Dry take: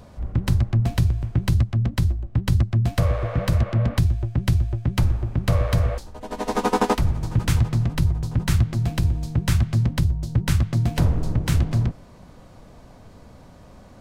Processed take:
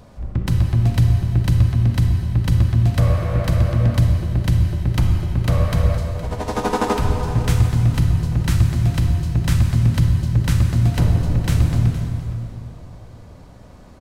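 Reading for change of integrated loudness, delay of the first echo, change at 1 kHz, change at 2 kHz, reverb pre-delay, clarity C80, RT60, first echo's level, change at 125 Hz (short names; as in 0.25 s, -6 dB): +4.0 dB, 0.465 s, +1.5 dB, +2.0 dB, 35 ms, 4.5 dB, 2.6 s, -15.0 dB, +4.5 dB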